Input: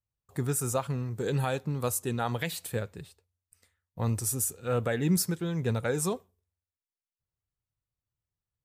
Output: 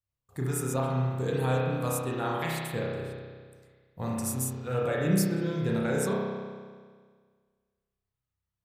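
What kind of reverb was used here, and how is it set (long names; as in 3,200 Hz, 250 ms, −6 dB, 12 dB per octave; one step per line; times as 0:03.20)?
spring reverb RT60 1.7 s, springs 31 ms, chirp 40 ms, DRR −4.5 dB
level −4 dB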